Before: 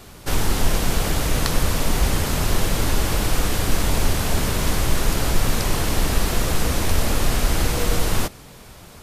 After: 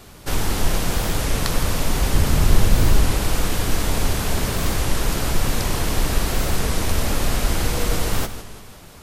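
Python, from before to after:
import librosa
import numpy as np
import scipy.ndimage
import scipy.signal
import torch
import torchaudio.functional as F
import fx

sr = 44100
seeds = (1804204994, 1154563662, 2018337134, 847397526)

y = fx.low_shelf(x, sr, hz=210.0, db=7.5, at=(2.14, 3.12))
y = fx.echo_feedback(y, sr, ms=165, feedback_pct=49, wet_db=-12.0)
y = fx.record_warp(y, sr, rpm=33.33, depth_cents=160.0)
y = y * 10.0 ** (-1.0 / 20.0)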